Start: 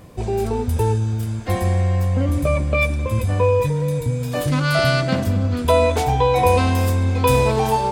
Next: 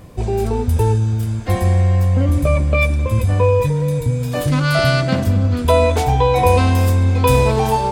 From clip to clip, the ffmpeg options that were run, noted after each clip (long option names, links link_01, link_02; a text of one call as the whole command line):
ffmpeg -i in.wav -af "lowshelf=frequency=93:gain=6,volume=1.5dB" out.wav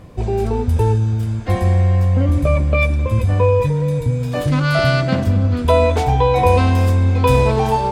ffmpeg -i in.wav -af "highshelf=frequency=7300:gain=-11" out.wav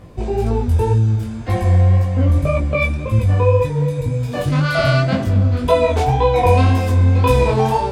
ffmpeg -i in.wav -af "flanger=delay=17.5:depth=5.5:speed=1.9,volume=2.5dB" out.wav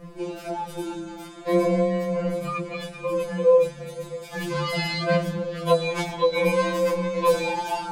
ffmpeg -i in.wav -af "afftfilt=real='re*2.83*eq(mod(b,8),0)':imag='im*2.83*eq(mod(b,8),0)':win_size=2048:overlap=0.75" out.wav